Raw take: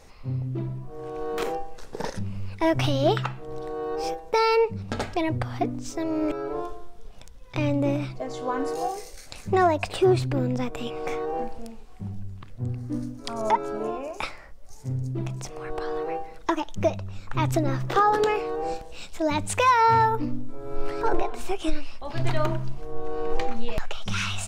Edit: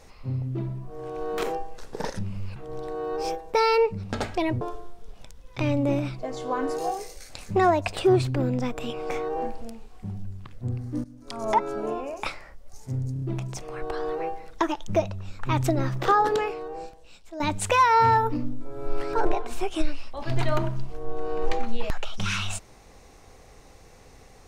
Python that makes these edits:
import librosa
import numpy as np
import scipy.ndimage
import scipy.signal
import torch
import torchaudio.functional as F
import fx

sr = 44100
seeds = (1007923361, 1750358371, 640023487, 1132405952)

y = fx.edit(x, sr, fx.cut(start_s=2.56, length_s=0.79),
    fx.cut(start_s=5.4, length_s=1.18),
    fx.fade_in_from(start_s=13.01, length_s=0.47, floor_db=-19.0),
    fx.stutter(start_s=15.1, slice_s=0.03, count=4),
    fx.fade_out_to(start_s=18.04, length_s=1.24, curve='qua', floor_db=-13.0), tone=tone)